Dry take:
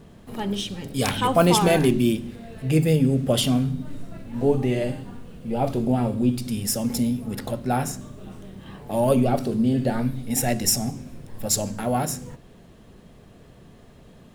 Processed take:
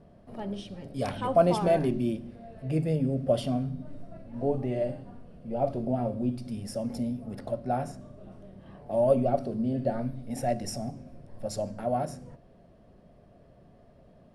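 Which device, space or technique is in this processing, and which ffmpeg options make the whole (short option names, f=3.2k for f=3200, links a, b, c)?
through cloth: -af "lowpass=9.3k,superequalizer=8b=2.51:14b=1.78:16b=2.24,highshelf=f=2.8k:g=-15,volume=-8dB"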